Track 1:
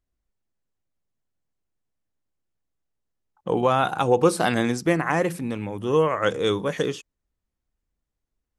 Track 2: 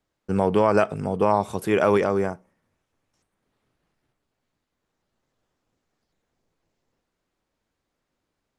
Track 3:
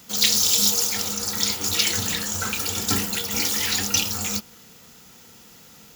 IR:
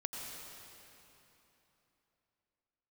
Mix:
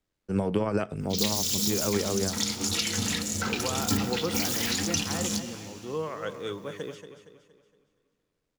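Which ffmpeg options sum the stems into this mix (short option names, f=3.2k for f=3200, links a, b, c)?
-filter_complex "[0:a]volume=-13dB,asplit=3[a][b][c];[b]volume=-20dB[d];[c]volume=-9.5dB[e];[1:a]equalizer=f=880:t=o:w=1.6:g=-6,tremolo=f=90:d=0.519,volume=0dB[f];[2:a]afwtdn=0.0224,equalizer=f=260:t=o:w=0.73:g=6,adelay=1000,volume=-3.5dB,asplit=2[g][h];[h]volume=-8.5dB[i];[3:a]atrim=start_sample=2205[j];[d][i]amix=inputs=2:normalize=0[k];[k][j]afir=irnorm=-1:irlink=0[l];[e]aecho=0:1:233|466|699|932|1165|1398:1|0.42|0.176|0.0741|0.0311|0.0131[m];[a][f][g][l][m]amix=inputs=5:normalize=0,acrossover=split=250[n][o];[o]acompressor=threshold=-25dB:ratio=6[p];[n][p]amix=inputs=2:normalize=0"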